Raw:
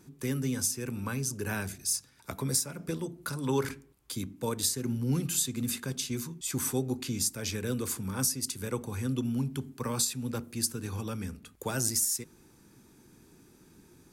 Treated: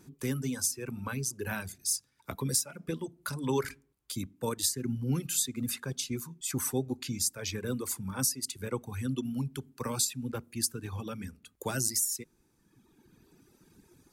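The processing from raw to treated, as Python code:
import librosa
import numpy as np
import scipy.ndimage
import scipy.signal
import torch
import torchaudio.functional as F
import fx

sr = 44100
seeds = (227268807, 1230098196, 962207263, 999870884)

y = fx.dereverb_blind(x, sr, rt60_s=1.8)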